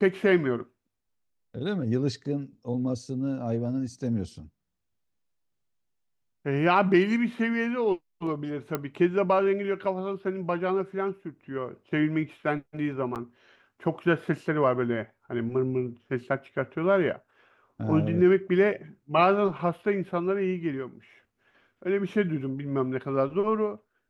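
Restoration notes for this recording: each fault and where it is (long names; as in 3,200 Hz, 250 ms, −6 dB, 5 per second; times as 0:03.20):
0:08.75: click −14 dBFS
0:13.15–0:13.16: drop-out 8.1 ms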